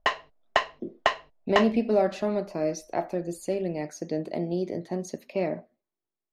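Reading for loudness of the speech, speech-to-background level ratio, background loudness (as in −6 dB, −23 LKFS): −29.0 LKFS, −0.5 dB, −28.5 LKFS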